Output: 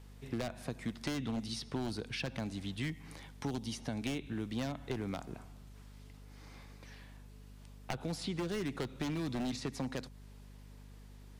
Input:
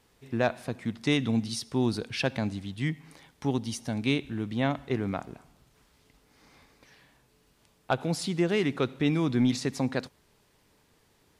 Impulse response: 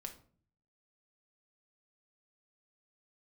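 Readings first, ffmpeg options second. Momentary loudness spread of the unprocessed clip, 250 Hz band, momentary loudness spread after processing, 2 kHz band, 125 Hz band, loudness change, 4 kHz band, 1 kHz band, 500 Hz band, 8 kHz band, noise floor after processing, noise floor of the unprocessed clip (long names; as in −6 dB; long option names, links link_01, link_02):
9 LU, −9.5 dB, 18 LU, −10.0 dB, −9.0 dB, −9.5 dB, −7.5 dB, −9.5 dB, −11.0 dB, −7.5 dB, −53 dBFS, −66 dBFS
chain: -filter_complex "[0:a]aeval=exprs='0.0891*(abs(mod(val(0)/0.0891+3,4)-2)-1)':channel_layout=same,acrossover=split=260|4300[link_01][link_02][link_03];[link_01]acompressor=threshold=-42dB:ratio=4[link_04];[link_02]acompressor=threshold=-41dB:ratio=4[link_05];[link_03]acompressor=threshold=-52dB:ratio=4[link_06];[link_04][link_05][link_06]amix=inputs=3:normalize=0,aeval=exprs='val(0)+0.00224*(sin(2*PI*50*n/s)+sin(2*PI*2*50*n/s)/2+sin(2*PI*3*50*n/s)/3+sin(2*PI*4*50*n/s)/4+sin(2*PI*5*50*n/s)/5)':channel_layout=same,volume=1dB"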